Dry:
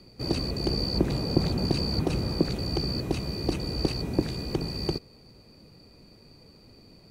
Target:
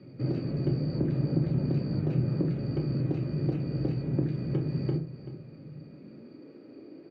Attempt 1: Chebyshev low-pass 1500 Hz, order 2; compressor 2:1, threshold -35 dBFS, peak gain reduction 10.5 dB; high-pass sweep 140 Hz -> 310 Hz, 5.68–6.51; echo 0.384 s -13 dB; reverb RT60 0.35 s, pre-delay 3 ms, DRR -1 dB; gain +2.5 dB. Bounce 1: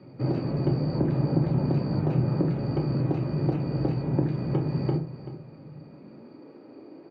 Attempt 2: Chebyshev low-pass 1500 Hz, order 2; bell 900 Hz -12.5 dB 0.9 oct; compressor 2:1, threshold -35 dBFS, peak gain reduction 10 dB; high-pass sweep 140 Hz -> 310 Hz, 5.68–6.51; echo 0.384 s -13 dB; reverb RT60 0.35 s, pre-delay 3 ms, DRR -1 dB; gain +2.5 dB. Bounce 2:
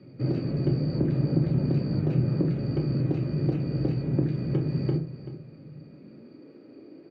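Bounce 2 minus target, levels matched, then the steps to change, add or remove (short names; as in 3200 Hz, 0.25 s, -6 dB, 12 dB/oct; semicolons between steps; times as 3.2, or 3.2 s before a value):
compressor: peak gain reduction -3 dB
change: compressor 2:1, threshold -41 dBFS, peak gain reduction 13 dB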